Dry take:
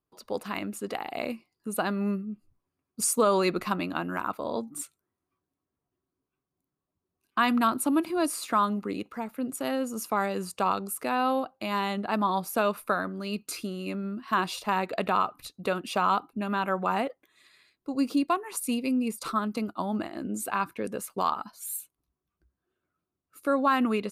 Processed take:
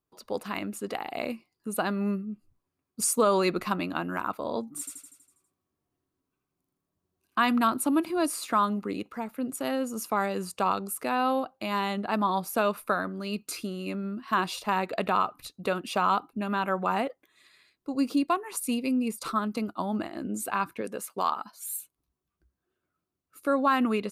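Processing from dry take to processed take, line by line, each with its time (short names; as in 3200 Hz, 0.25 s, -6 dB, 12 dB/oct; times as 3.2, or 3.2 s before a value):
4.79–7.43 feedback echo 81 ms, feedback 55%, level -3 dB
20.81–21.58 HPF 280 Hz 6 dB/oct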